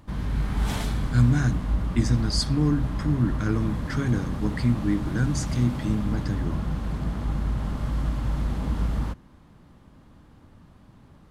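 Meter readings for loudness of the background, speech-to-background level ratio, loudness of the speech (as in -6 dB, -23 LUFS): -29.5 LUFS, 3.0 dB, -26.5 LUFS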